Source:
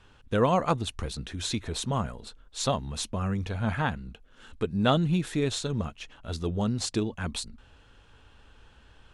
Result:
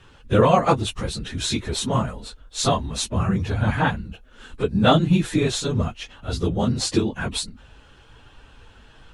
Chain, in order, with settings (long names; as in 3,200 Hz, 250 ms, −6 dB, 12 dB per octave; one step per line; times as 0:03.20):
random phases in long frames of 50 ms
level +7 dB